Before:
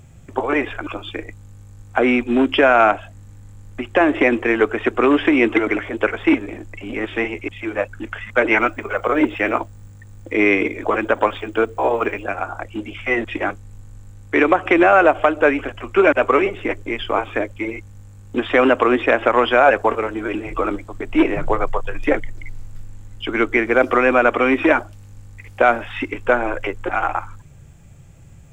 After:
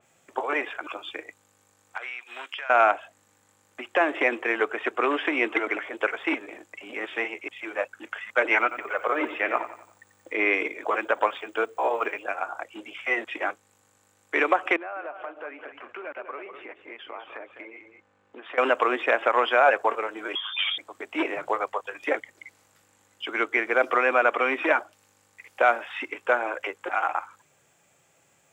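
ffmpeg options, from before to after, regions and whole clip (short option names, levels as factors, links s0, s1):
-filter_complex "[0:a]asettb=1/sr,asplit=3[s0][s1][s2];[s0]atrim=end=1.974[s3];[s1]atrim=start=1.97:end=2.7,asetpts=PTS-STARTPTS,afade=t=in:d=0.004:c=qsin,afade=t=out:st=0.726:d=0.004:c=qsin,highpass=1300,acompressor=threshold=0.0501:ratio=10:attack=3.2:release=140:knee=1:detection=peak[s4];[s2]atrim=start=2.696[s5];[s3][s4]acrossfade=d=0.004:c1=hsin:c2=qsin[s6];[s6][s5]acrossfade=d=0.004:c1=qsin:c2=hsin,asettb=1/sr,asplit=3[s7][s8][s9];[s7]atrim=end=8.624[s10];[s8]atrim=start=8.62:end=10.54,asetpts=PTS-STARTPTS,afade=t=in:d=0.004:c=qsin,afade=t=out:st=1.916:d=0.004:c=qsin,acrossover=split=4100[s11][s12];[s12]acompressor=threshold=0.00316:ratio=4:attack=1:release=60[s13];[s11][s13]amix=inputs=2:normalize=0,aecho=1:1:90|180|270|360:0.237|0.0996|0.0418|0.0176,atrim=end_sample=84672[s14];[s9]atrim=start=10.536[s15];[s10][s14]acrossfade=d=0.004:c1=hsin:c2=qsin[s16];[s16][s15]acrossfade=d=0.004:c1=qsin:c2=hsin,asettb=1/sr,asplit=3[s17][s18][s19];[s17]atrim=end=14.764[s20];[s18]atrim=start=14.76:end=18.58,asetpts=PTS-STARTPTS,afade=t=in:d=0.004:c=qsin,afade=t=out:st=3.816:d=0.004:c=qsin,lowpass=2400,acompressor=threshold=0.0251:ratio=3:attack=3.2:release=140:knee=1:detection=peak,aecho=1:1:204:0.355,atrim=end_sample=168462[s21];[s19]atrim=start=18.576[s22];[s20][s21]acrossfade=d=0.004:c1=hsin:c2=qsin[s23];[s23][s22]acrossfade=d=0.004:c1=qsin:c2=hsin,asettb=1/sr,asplit=3[s24][s25][s26];[s24]atrim=end=20.354[s27];[s25]atrim=start=20.35:end=20.78,asetpts=PTS-STARTPTS,afade=t=in:d=0.004:c=qsin,afade=t=out:st=0.426:d=0.004:c=qsin,aeval=exprs='clip(val(0),-1,0.0944)':c=same,lowpass=f=3100:t=q:w=0.5098,lowpass=f=3100:t=q:w=0.6013,lowpass=f=3100:t=q:w=0.9,lowpass=f=3100:t=q:w=2.563,afreqshift=-3600[s28];[s26]atrim=start=20.776[s29];[s27][s28]acrossfade=d=0.004:c1=hsin:c2=qsin[s30];[s30][s29]acrossfade=d=0.004:c1=qsin:c2=hsin,highpass=530,adynamicequalizer=threshold=0.0224:dfrequency=3500:dqfactor=0.7:tfrequency=3500:tqfactor=0.7:attack=5:release=100:ratio=0.375:range=1.5:mode=cutabove:tftype=highshelf,volume=0.596"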